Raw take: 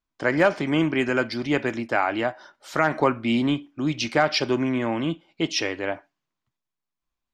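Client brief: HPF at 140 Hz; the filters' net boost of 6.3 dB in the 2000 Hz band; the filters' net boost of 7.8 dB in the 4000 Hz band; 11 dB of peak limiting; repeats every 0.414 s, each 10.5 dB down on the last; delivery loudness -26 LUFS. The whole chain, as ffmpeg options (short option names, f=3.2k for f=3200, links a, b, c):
-af "highpass=140,equalizer=f=2k:t=o:g=6,equalizer=f=4k:t=o:g=8.5,alimiter=limit=-13.5dB:level=0:latency=1,aecho=1:1:414|828|1242:0.299|0.0896|0.0269,volume=-1dB"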